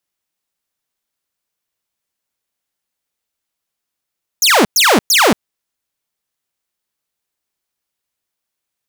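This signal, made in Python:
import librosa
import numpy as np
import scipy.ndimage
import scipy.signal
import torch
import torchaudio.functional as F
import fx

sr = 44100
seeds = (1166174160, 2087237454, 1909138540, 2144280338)

y = fx.laser_zaps(sr, level_db=-5.0, start_hz=7100.0, end_hz=180.0, length_s=0.23, wave='saw', shots=3, gap_s=0.11)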